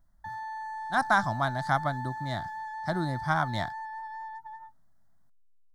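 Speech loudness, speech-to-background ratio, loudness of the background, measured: -30.0 LUFS, 8.5 dB, -38.5 LUFS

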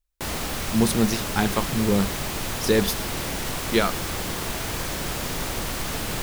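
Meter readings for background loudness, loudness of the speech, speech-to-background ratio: -28.0 LUFS, -24.5 LUFS, 3.5 dB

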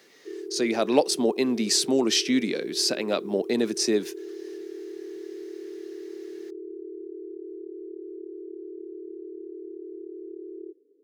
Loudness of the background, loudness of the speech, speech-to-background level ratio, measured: -38.5 LUFS, -24.5 LUFS, 14.0 dB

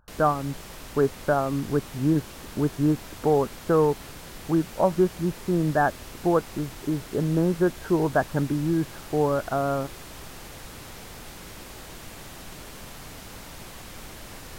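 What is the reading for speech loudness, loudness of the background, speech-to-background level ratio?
-25.5 LUFS, -41.5 LUFS, 16.0 dB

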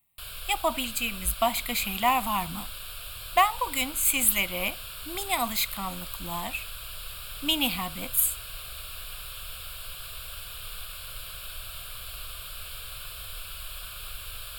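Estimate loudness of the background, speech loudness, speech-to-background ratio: -38.0 LUFS, -26.5 LUFS, 11.5 dB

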